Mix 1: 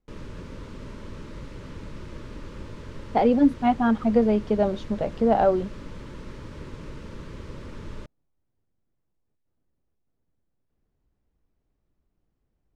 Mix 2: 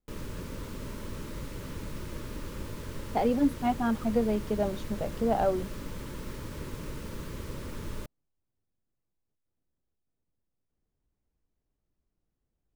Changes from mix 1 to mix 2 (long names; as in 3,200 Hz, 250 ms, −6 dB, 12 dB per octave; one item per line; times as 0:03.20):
speech −7.0 dB
master: remove high-frequency loss of the air 95 metres